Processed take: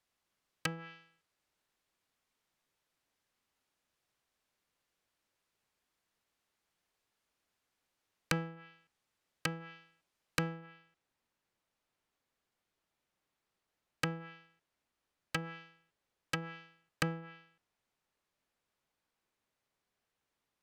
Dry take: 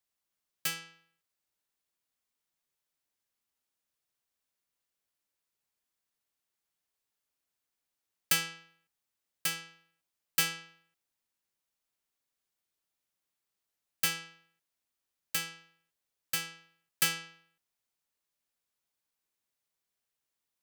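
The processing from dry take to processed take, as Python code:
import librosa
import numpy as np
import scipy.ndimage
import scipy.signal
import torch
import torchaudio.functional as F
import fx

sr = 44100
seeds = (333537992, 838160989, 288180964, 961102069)

y = fx.lowpass(x, sr, hz=fx.steps((0.0, 3100.0), (10.66, 1800.0)), slope=6)
y = fx.env_lowpass_down(y, sr, base_hz=620.0, full_db=-36.5)
y = y * librosa.db_to_amplitude(8.5)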